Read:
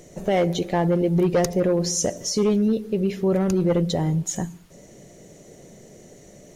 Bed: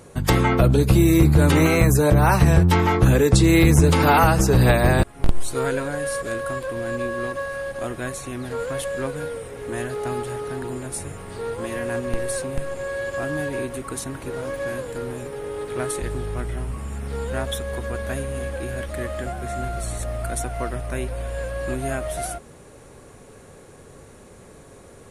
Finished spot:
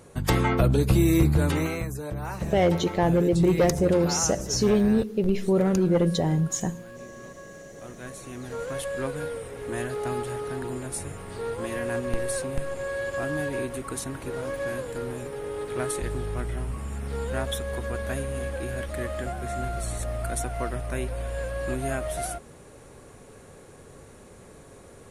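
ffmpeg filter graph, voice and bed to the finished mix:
-filter_complex "[0:a]adelay=2250,volume=-1dB[a];[1:a]volume=10dB,afade=t=out:st=1.19:d=0.71:silence=0.237137,afade=t=in:st=7.71:d=1.42:silence=0.188365[b];[a][b]amix=inputs=2:normalize=0"

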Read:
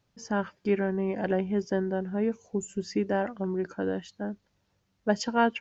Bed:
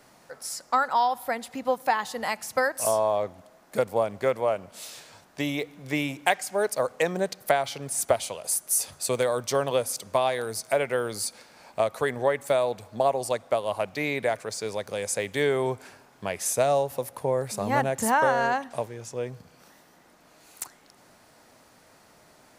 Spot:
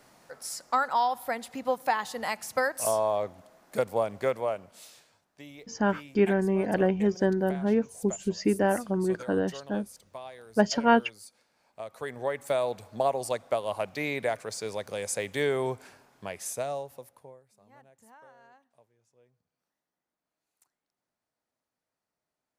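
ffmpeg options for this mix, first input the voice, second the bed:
-filter_complex "[0:a]adelay=5500,volume=3dB[a];[1:a]volume=13dB,afade=t=out:st=4.23:d=0.96:silence=0.158489,afade=t=in:st=11.74:d=0.92:silence=0.16788,afade=t=out:st=15.65:d=1.76:silence=0.0334965[b];[a][b]amix=inputs=2:normalize=0"

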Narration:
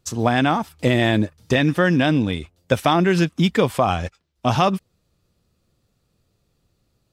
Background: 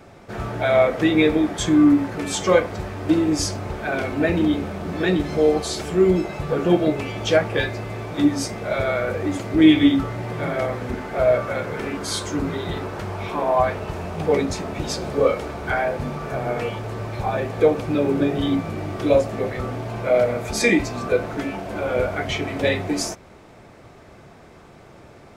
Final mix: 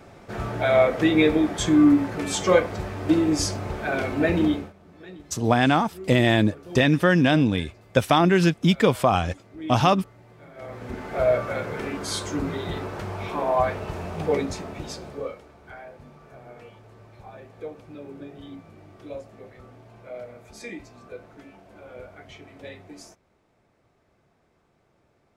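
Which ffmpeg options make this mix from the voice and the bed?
-filter_complex "[0:a]adelay=5250,volume=-1dB[a];[1:a]volume=18dB,afade=t=out:st=4.47:d=0.26:silence=0.0891251,afade=t=in:st=10.54:d=0.61:silence=0.105925,afade=t=out:st=14.17:d=1.26:silence=0.141254[b];[a][b]amix=inputs=2:normalize=0"

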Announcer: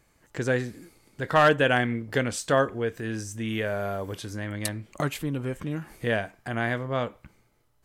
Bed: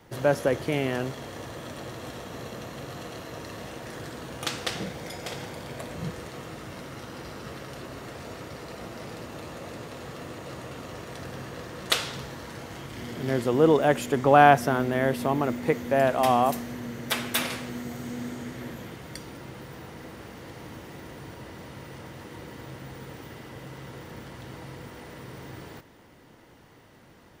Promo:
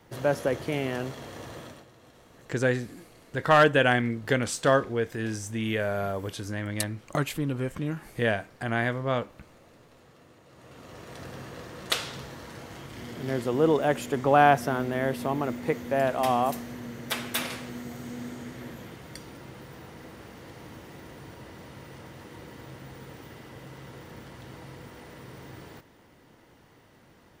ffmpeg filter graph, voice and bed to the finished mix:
-filter_complex "[0:a]adelay=2150,volume=0.5dB[a];[1:a]volume=11dB,afade=t=out:st=1.58:d=0.28:silence=0.199526,afade=t=in:st=10.51:d=0.71:silence=0.211349[b];[a][b]amix=inputs=2:normalize=0"

